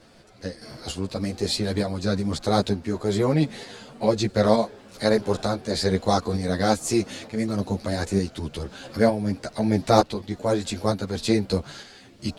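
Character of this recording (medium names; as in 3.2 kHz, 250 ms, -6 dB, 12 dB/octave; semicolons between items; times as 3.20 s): tremolo saw up 1.1 Hz, depth 45%; a shimmering, thickened sound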